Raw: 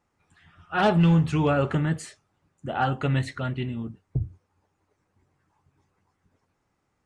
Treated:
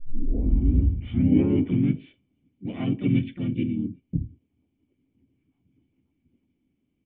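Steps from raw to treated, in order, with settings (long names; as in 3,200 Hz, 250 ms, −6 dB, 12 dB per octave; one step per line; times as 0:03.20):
turntable start at the beginning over 2.01 s
pitch-shifted copies added −3 semitones 0 dB, +5 semitones −3 dB
formant resonators in series i
level +7 dB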